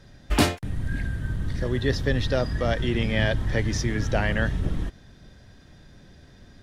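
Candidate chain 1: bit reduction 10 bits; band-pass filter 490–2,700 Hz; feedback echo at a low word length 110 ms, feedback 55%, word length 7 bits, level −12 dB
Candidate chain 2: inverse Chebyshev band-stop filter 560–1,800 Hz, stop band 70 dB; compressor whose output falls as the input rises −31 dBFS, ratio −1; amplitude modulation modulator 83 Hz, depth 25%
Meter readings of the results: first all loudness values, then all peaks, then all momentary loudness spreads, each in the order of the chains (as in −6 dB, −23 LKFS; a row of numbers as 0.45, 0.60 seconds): −31.5, −36.0 LKFS; −11.5, −18.5 dBFS; 14, 17 LU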